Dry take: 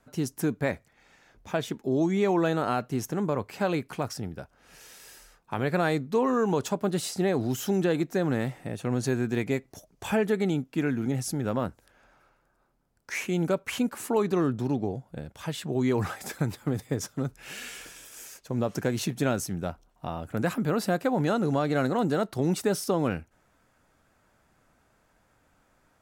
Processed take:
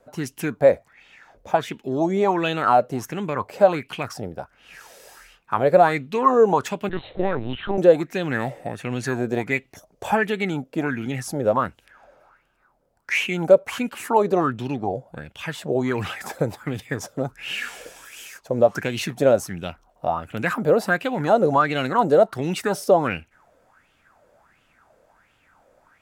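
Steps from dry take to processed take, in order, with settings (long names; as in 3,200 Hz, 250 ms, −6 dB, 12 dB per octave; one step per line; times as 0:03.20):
0:06.89–0:07.78: linear-prediction vocoder at 8 kHz pitch kept
auto-filter bell 1.4 Hz 510–3,000 Hz +18 dB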